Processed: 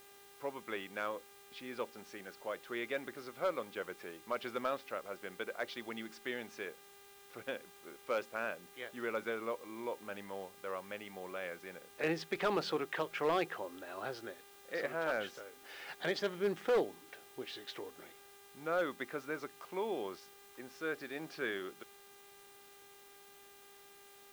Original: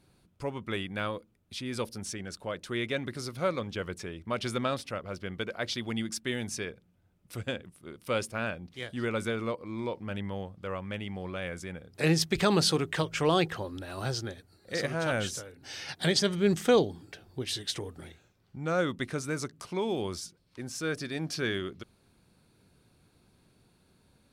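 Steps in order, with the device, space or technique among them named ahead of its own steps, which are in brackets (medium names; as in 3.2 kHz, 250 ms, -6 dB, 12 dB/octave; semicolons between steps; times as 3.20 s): aircraft radio (band-pass 390–2300 Hz; hard clipper -22 dBFS, distortion -15 dB; mains buzz 400 Hz, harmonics 10, -58 dBFS -4 dB/octave; white noise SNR 21 dB); trim -3.5 dB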